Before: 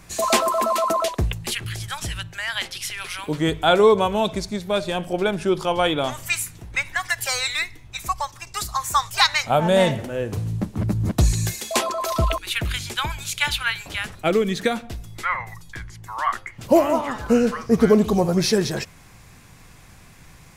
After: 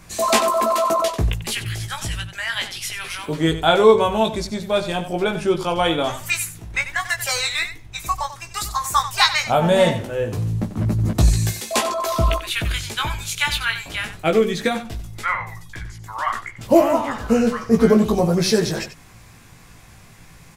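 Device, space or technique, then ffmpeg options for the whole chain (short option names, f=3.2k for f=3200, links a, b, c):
slapback doubling: -filter_complex "[0:a]asplit=3[a][b][c];[b]adelay=18,volume=-4.5dB[d];[c]adelay=93,volume=-11.5dB[e];[a][d][e]amix=inputs=3:normalize=0"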